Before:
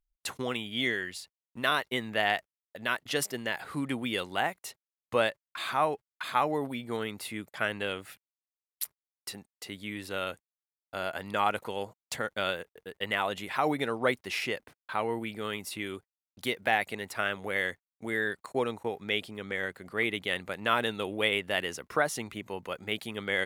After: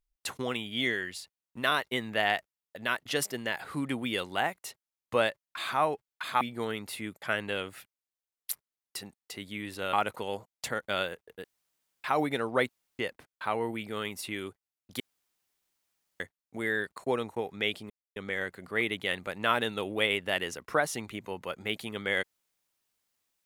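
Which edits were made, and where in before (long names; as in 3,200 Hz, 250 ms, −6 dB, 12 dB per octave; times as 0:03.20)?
0:06.41–0:06.73: remove
0:10.25–0:11.41: remove
0:12.92–0:13.52: fill with room tone
0:14.17–0:14.47: fill with room tone
0:16.48–0:17.68: fill with room tone
0:19.38: splice in silence 0.26 s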